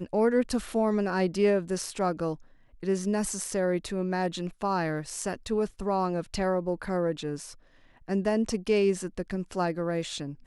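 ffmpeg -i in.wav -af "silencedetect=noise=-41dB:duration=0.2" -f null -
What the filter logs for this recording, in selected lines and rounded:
silence_start: 2.35
silence_end: 2.83 | silence_duration: 0.47
silence_start: 7.53
silence_end: 8.08 | silence_duration: 0.55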